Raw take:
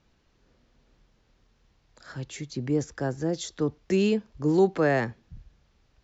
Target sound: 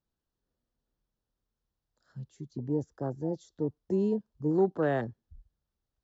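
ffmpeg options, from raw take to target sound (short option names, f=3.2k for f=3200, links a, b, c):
-af "afwtdn=0.0355,equalizer=f=2.3k:t=o:w=0.52:g=-12,volume=-4.5dB"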